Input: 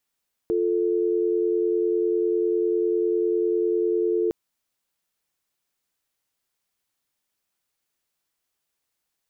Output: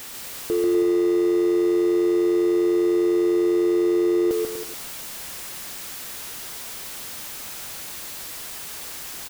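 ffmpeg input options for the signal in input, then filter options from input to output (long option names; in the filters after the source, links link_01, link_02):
-f lavfi -i "aevalsrc='0.075*(sin(2*PI*350*t)+sin(2*PI*440*t))':duration=3.81:sample_rate=44100"
-af "aeval=exprs='val(0)+0.5*0.0282*sgn(val(0))':channel_layout=same,aecho=1:1:140|245|323.8|382.8|427.1:0.631|0.398|0.251|0.158|0.1"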